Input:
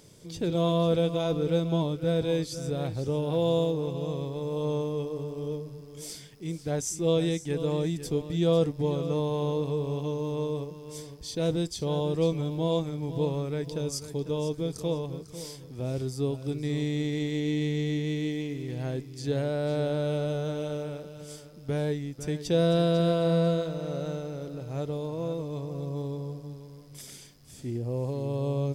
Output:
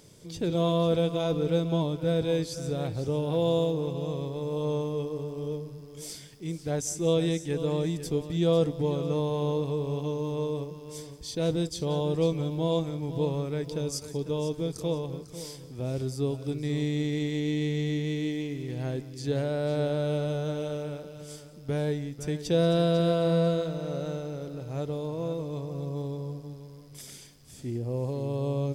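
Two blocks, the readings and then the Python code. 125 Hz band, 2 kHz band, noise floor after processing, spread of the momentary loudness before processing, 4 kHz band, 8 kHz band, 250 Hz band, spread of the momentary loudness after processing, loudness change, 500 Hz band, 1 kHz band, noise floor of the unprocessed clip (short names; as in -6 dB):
0.0 dB, 0.0 dB, -47 dBFS, 14 LU, 0.0 dB, 0.0 dB, 0.0 dB, 14 LU, 0.0 dB, 0.0 dB, 0.0 dB, -47 dBFS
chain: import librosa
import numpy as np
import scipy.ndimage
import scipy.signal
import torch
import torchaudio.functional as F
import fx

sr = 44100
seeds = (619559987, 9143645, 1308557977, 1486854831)

y = x + 10.0 ** (-19.0 / 20.0) * np.pad(x, (int(182 * sr / 1000.0), 0))[:len(x)]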